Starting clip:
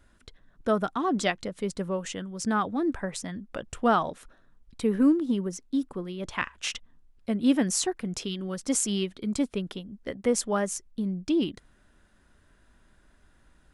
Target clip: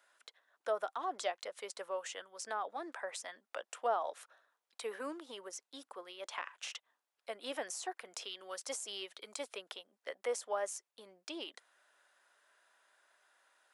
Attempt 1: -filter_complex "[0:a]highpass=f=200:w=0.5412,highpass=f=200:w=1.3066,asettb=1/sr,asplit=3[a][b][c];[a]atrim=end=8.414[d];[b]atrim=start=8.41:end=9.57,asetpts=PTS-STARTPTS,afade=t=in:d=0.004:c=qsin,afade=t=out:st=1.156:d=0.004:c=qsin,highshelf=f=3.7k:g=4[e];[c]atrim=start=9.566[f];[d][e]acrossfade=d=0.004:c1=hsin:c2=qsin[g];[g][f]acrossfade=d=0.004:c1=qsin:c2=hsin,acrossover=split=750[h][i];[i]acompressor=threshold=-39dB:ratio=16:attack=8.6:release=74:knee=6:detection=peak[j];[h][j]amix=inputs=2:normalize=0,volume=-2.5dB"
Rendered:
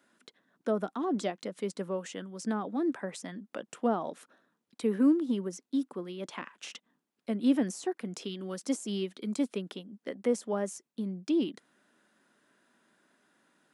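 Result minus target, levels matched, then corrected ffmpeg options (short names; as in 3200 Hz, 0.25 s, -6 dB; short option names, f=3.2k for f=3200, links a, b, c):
250 Hz band +15.0 dB
-filter_complex "[0:a]highpass=f=580:w=0.5412,highpass=f=580:w=1.3066,asettb=1/sr,asplit=3[a][b][c];[a]atrim=end=8.414[d];[b]atrim=start=8.41:end=9.57,asetpts=PTS-STARTPTS,afade=t=in:d=0.004:c=qsin,afade=t=out:st=1.156:d=0.004:c=qsin,highshelf=f=3.7k:g=4[e];[c]atrim=start=9.566[f];[d][e]acrossfade=d=0.004:c1=hsin:c2=qsin[g];[g][f]acrossfade=d=0.004:c1=qsin:c2=hsin,acrossover=split=750[h][i];[i]acompressor=threshold=-39dB:ratio=16:attack=8.6:release=74:knee=6:detection=peak[j];[h][j]amix=inputs=2:normalize=0,volume=-2.5dB"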